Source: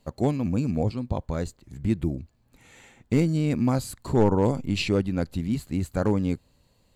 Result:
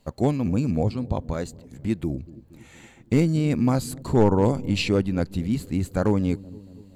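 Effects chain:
0:01.33–0:02.10: low-shelf EQ 120 Hz −10.5 dB
on a send: delay with a low-pass on its return 234 ms, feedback 60%, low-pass 440 Hz, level −18 dB
on the sum: level +2 dB

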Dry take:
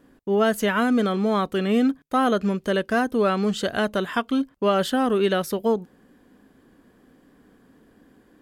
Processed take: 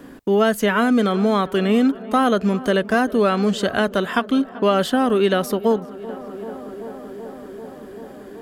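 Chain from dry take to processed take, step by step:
tape delay 386 ms, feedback 87%, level −18.5 dB, low-pass 1,800 Hz
multiband upward and downward compressor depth 40%
level +3.5 dB

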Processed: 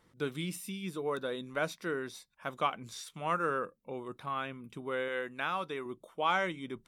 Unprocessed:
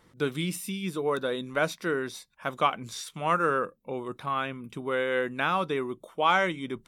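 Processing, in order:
0:05.08–0:05.86: low-shelf EQ 410 Hz −6.5 dB
level −6.5 dB

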